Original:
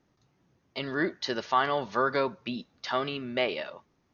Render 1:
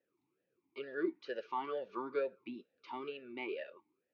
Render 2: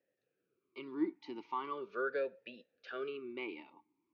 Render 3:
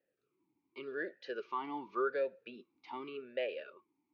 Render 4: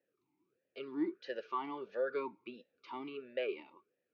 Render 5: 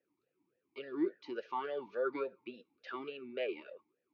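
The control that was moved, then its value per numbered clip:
talking filter, rate: 2.2 Hz, 0.4 Hz, 0.87 Hz, 1.5 Hz, 3.5 Hz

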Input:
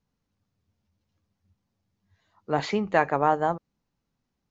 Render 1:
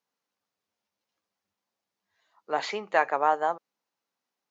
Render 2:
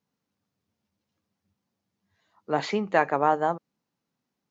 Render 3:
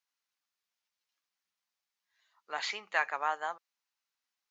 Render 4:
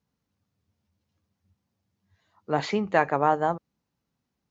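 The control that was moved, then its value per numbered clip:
high-pass, cutoff frequency: 540 Hz, 170 Hz, 1.5 kHz, 60 Hz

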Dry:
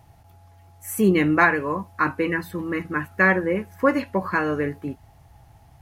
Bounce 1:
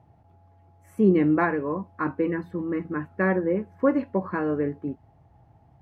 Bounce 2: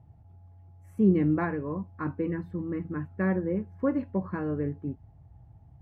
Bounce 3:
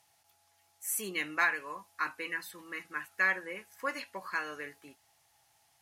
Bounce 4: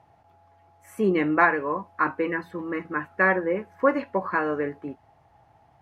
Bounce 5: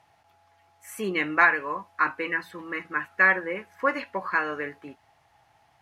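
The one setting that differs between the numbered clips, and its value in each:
band-pass filter, frequency: 290 Hz, 110 Hz, 7.3 kHz, 750 Hz, 2 kHz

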